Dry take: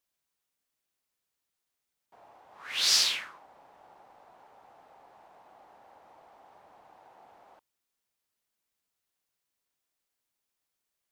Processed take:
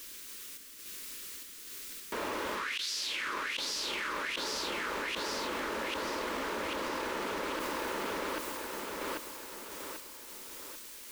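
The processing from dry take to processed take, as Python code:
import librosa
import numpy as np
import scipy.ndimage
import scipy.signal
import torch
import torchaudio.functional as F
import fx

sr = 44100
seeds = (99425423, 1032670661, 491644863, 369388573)

p1 = fx.fixed_phaser(x, sr, hz=310.0, stages=4)
p2 = fx.gate_flip(p1, sr, shuts_db=-23.0, range_db=-25)
p3 = fx.tremolo_random(p2, sr, seeds[0], hz=3.5, depth_pct=55)
p4 = p3 + fx.echo_feedback(p3, sr, ms=791, feedback_pct=44, wet_db=-4.0, dry=0)
y = fx.env_flatten(p4, sr, amount_pct=100)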